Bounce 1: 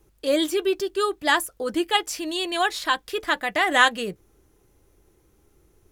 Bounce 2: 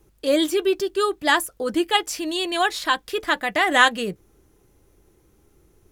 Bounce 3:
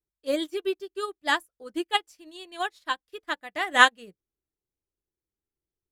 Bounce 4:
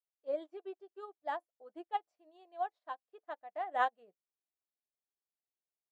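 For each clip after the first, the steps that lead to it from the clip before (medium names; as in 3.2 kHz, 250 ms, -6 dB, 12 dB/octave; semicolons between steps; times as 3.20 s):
peaking EQ 190 Hz +2.5 dB 1.5 oct; trim +1.5 dB
upward expansion 2.5:1, over -36 dBFS; trim +1 dB
band-pass filter 690 Hz, Q 4; trim -2.5 dB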